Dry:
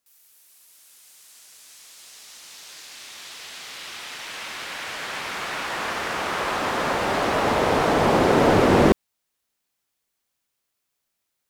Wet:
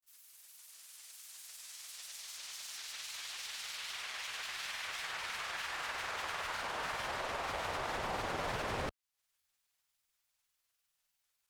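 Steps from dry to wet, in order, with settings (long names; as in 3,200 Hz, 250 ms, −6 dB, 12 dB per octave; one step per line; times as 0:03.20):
parametric band 270 Hz −15 dB 2.2 octaves
downward compressor 2.5 to 1, threshold −40 dBFS, peak gain reduction 13 dB
granular cloud, spray 32 ms, pitch spread up and down by 3 semitones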